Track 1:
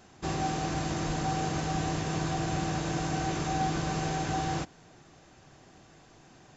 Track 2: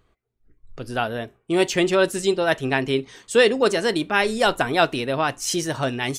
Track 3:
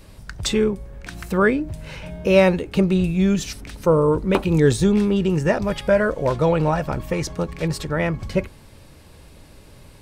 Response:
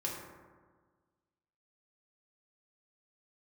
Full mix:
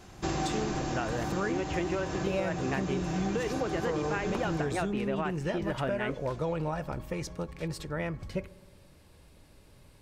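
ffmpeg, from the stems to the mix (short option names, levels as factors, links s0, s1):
-filter_complex "[0:a]volume=0.944,asplit=2[s0][s1];[s1]volume=0.631[s2];[1:a]lowpass=f=2600:w=0.5412,lowpass=f=2600:w=1.3066,acompressor=threshold=0.112:ratio=6,volume=0.562,asplit=2[s3][s4];[2:a]volume=0.266,asplit=2[s5][s6];[s6]volume=0.0841[s7];[s4]apad=whole_len=289494[s8];[s0][s8]sidechaincompress=threshold=0.00501:ratio=8:attack=16:release=857[s9];[3:a]atrim=start_sample=2205[s10];[s2][s7]amix=inputs=2:normalize=0[s11];[s11][s10]afir=irnorm=-1:irlink=0[s12];[s9][s3][s5][s12]amix=inputs=4:normalize=0,acompressor=threshold=0.0447:ratio=6"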